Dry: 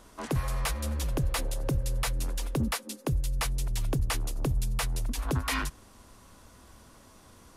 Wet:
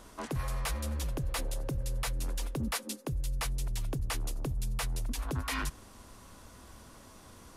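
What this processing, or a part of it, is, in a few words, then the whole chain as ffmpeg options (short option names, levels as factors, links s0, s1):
compression on the reversed sound: -af "areverse,acompressor=threshold=0.0251:ratio=6,areverse,volume=1.19"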